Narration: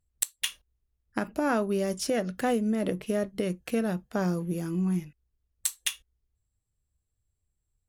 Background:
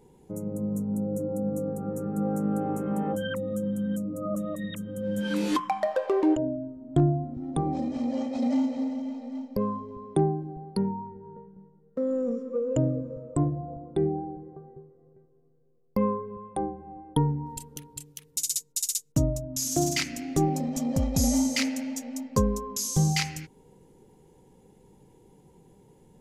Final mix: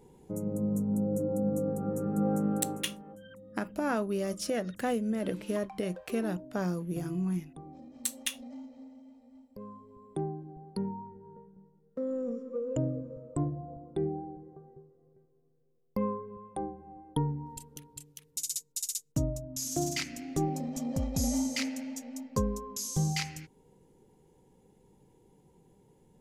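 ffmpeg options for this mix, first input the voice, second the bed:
-filter_complex "[0:a]adelay=2400,volume=0.631[s0];[1:a]volume=4.73,afade=t=out:st=2.35:d=0.62:silence=0.105925,afade=t=in:st=9.5:d=1.48:silence=0.199526[s1];[s0][s1]amix=inputs=2:normalize=0"

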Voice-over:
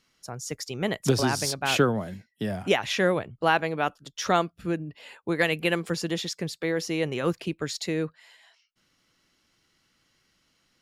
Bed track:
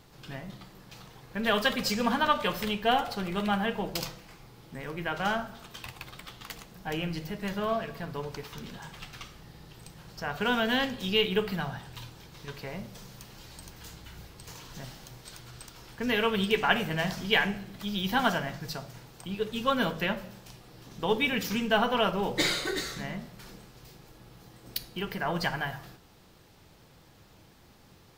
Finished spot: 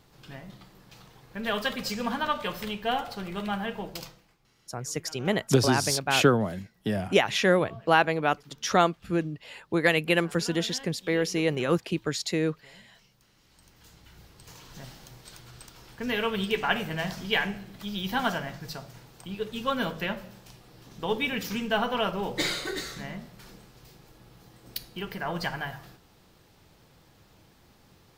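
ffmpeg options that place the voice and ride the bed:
-filter_complex "[0:a]adelay=4450,volume=1.19[s0];[1:a]volume=4.73,afade=t=out:st=3.79:d=0.58:silence=0.177828,afade=t=in:st=13.4:d=1.47:silence=0.149624[s1];[s0][s1]amix=inputs=2:normalize=0"

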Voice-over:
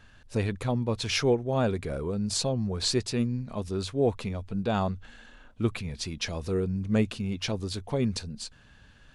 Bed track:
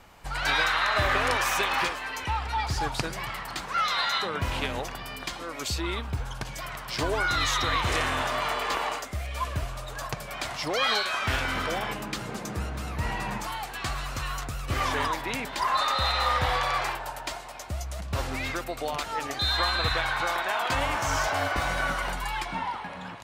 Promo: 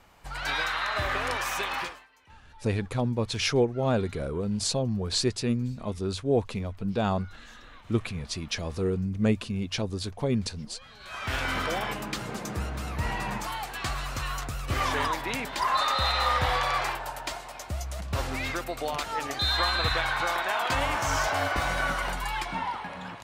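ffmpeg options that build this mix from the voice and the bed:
-filter_complex "[0:a]adelay=2300,volume=1.06[s0];[1:a]volume=13.3,afade=t=out:st=1.75:d=0.32:silence=0.0749894,afade=t=in:st=10.99:d=0.5:silence=0.0446684[s1];[s0][s1]amix=inputs=2:normalize=0"

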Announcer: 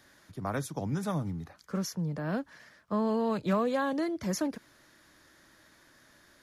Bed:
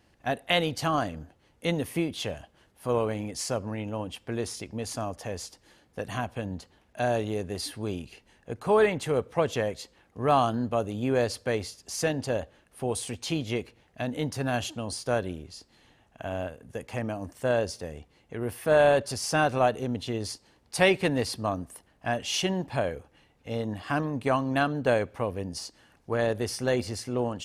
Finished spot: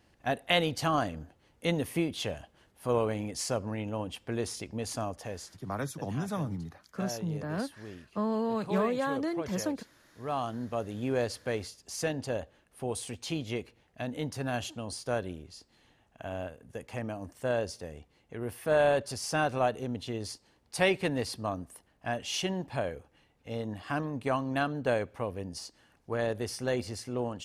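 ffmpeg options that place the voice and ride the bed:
-filter_complex "[0:a]adelay=5250,volume=0.841[s0];[1:a]volume=2.24,afade=t=out:st=5.02:d=0.74:silence=0.266073,afade=t=in:st=10.19:d=0.8:silence=0.375837[s1];[s0][s1]amix=inputs=2:normalize=0"

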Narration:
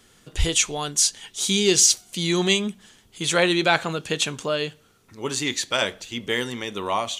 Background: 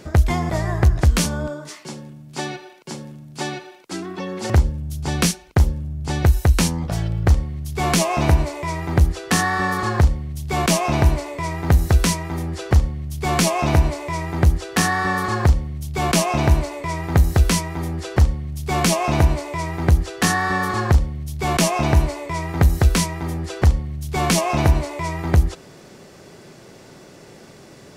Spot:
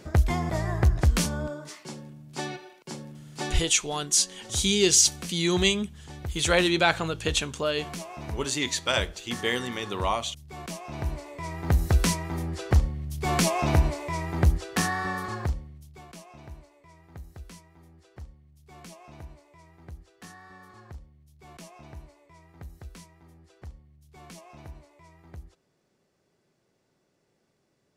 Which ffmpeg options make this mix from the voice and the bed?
-filter_complex "[0:a]adelay=3150,volume=0.75[s0];[1:a]volume=2.51,afade=t=out:st=3.56:d=0.3:silence=0.211349,afade=t=in:st=10.86:d=1.19:silence=0.199526,afade=t=out:st=14.46:d=1.6:silence=0.0707946[s1];[s0][s1]amix=inputs=2:normalize=0"

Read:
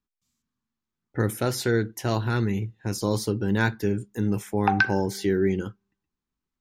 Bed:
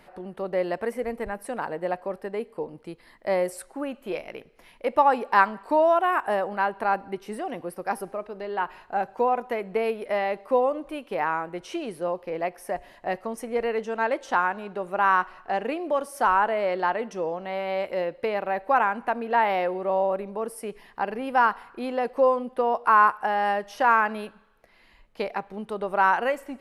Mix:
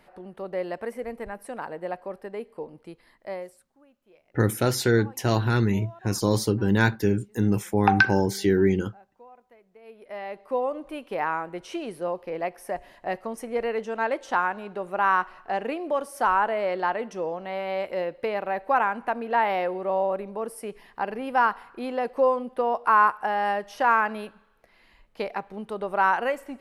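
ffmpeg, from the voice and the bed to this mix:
-filter_complex "[0:a]adelay=3200,volume=1.33[s0];[1:a]volume=12.6,afade=t=out:st=2.98:d=0.67:silence=0.0707946,afade=t=in:st=9.81:d=1.21:silence=0.0501187[s1];[s0][s1]amix=inputs=2:normalize=0"

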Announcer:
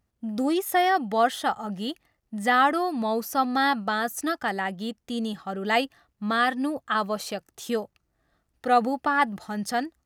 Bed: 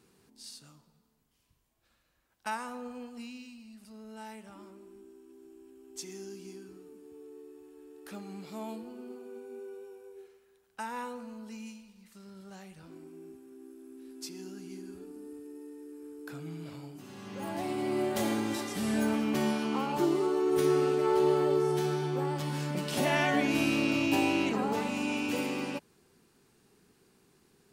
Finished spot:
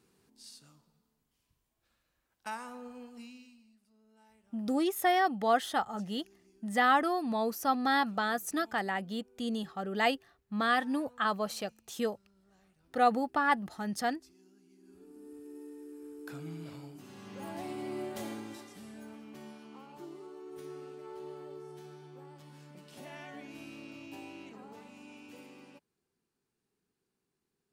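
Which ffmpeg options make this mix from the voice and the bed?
-filter_complex "[0:a]adelay=4300,volume=0.562[s0];[1:a]volume=4.73,afade=t=out:st=3.2:d=0.62:silence=0.188365,afade=t=in:st=14.78:d=0.8:silence=0.125893,afade=t=out:st=16.47:d=2.47:silence=0.11885[s1];[s0][s1]amix=inputs=2:normalize=0"

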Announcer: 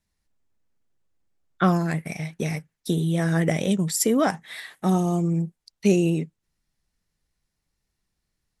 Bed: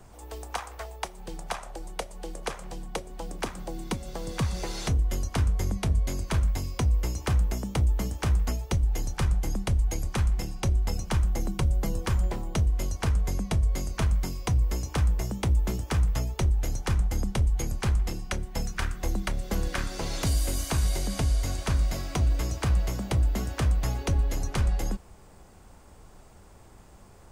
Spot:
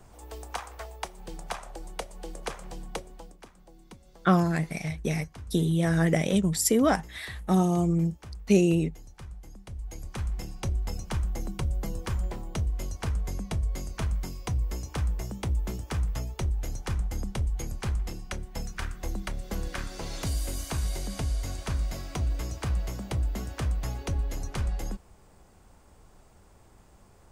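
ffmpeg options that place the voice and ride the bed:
-filter_complex "[0:a]adelay=2650,volume=0.841[s0];[1:a]volume=3.76,afade=t=out:st=2.94:d=0.43:silence=0.158489,afade=t=in:st=9.64:d=0.86:silence=0.211349[s1];[s0][s1]amix=inputs=2:normalize=0"

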